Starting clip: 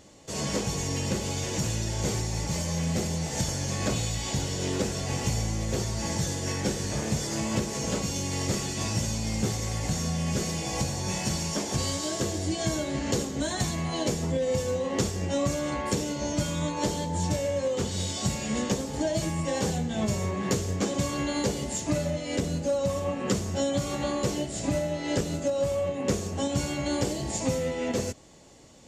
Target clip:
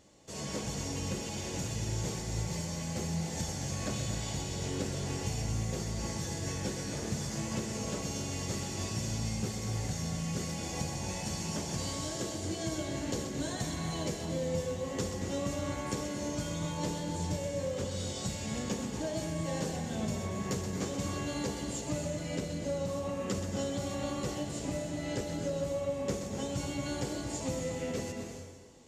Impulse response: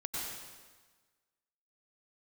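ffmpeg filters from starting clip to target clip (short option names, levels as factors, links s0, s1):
-filter_complex "[0:a]asplit=2[s0][s1];[1:a]atrim=start_sample=2205,adelay=127[s2];[s1][s2]afir=irnorm=-1:irlink=0,volume=0.531[s3];[s0][s3]amix=inputs=2:normalize=0,volume=0.376"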